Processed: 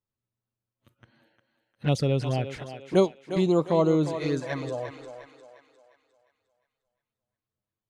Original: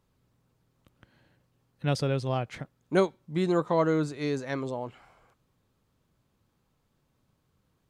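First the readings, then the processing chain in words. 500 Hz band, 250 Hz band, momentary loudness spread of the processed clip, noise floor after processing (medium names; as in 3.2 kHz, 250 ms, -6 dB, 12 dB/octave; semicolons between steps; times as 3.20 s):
+3.0 dB, +3.5 dB, 14 LU, under -85 dBFS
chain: spectral noise reduction 21 dB; touch-sensitive flanger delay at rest 9.2 ms, full sweep at -23 dBFS; thinning echo 354 ms, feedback 44%, high-pass 330 Hz, level -9 dB; trim +4 dB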